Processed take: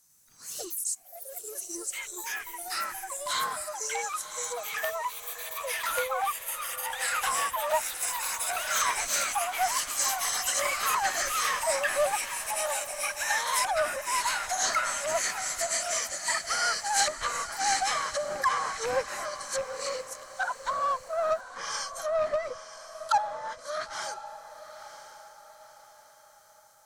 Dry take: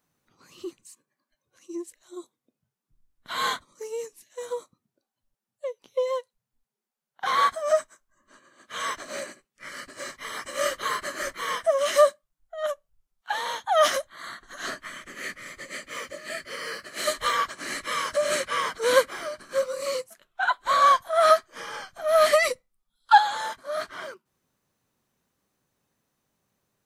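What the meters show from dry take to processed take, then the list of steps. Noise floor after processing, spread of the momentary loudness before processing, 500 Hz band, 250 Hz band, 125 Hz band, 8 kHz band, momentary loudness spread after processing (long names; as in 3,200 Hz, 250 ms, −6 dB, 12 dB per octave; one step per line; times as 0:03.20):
−55 dBFS, 20 LU, −7.0 dB, −7.5 dB, can't be measured, +9.0 dB, 10 LU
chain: loose part that buzzes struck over −37 dBFS, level −12 dBFS
treble cut that deepens with the level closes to 710 Hz, closed at −21 dBFS
in parallel at −6.5 dB: soft clipping −22 dBFS, distortion −11 dB
on the sum: high shelf with overshoot 4,400 Hz +13 dB, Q 1.5
on a send: feedback delay with all-pass diffusion 982 ms, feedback 41%, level −12 dB
on the sum: delay with pitch and tempo change per echo 93 ms, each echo +4 semitones, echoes 3
parametric band 340 Hz −12 dB 2.5 octaves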